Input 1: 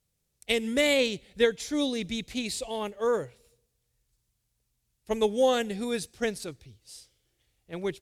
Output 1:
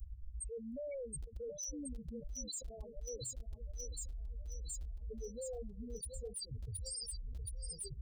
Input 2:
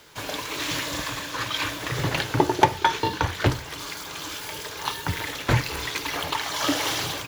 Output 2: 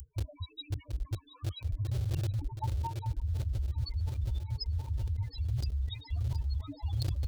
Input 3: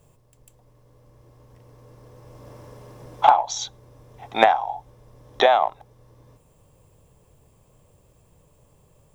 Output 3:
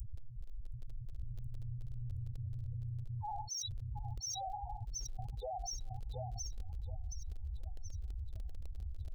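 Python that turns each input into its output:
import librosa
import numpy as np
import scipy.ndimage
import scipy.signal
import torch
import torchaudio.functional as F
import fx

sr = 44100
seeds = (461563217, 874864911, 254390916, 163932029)

p1 = fx.spec_topn(x, sr, count=2)
p2 = scipy.signal.sosfilt(scipy.signal.cheby2(4, 50, [170.0, 3400.0], 'bandstop', fs=sr, output='sos'), p1)
p3 = np.where(np.abs(p2) >= 10.0 ** (-59.5 / 20.0), p2, 0.0)
p4 = p2 + F.gain(torch.from_numpy(p3), -5.5).numpy()
p5 = fx.graphic_eq(p4, sr, hz=(125, 250, 1000, 2000, 4000), db=(-9, -7, -10, -6, 4))
p6 = p5 + fx.echo_feedback(p5, sr, ms=722, feedback_pct=56, wet_db=-14, dry=0)
p7 = fx.env_flatten(p6, sr, amount_pct=100)
y = F.gain(torch.from_numpy(p7), 6.0).numpy()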